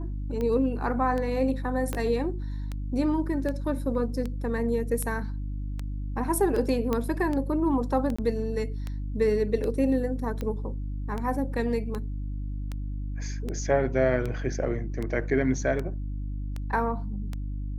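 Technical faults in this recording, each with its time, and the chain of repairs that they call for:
mains hum 50 Hz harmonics 6 −32 dBFS
scratch tick 78 rpm −20 dBFS
0:01.93: click −16 dBFS
0:06.93: click −14 dBFS
0:08.16–0:08.19: drop-out 25 ms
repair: click removal
hum removal 50 Hz, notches 6
repair the gap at 0:08.16, 25 ms

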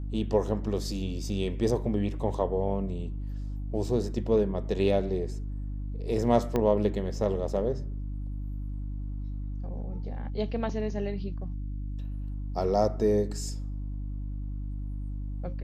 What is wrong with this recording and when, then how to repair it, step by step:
mains hum 50 Hz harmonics 6 −34 dBFS
0:06.56: click −15 dBFS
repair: click removal
hum removal 50 Hz, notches 6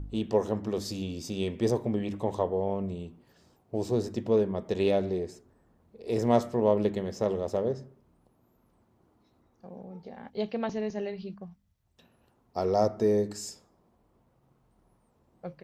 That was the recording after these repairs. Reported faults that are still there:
0:06.56: click

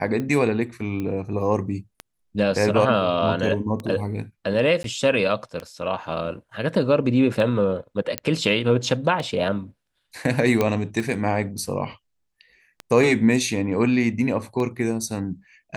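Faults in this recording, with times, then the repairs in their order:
scratch tick 33 1/3 rpm −17 dBFS
0:01.00: click −18 dBFS
0:04.83–0:04.84: drop-out 12 ms
0:08.18: click −7 dBFS
0:10.61: click −8 dBFS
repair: click removal
repair the gap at 0:04.83, 12 ms

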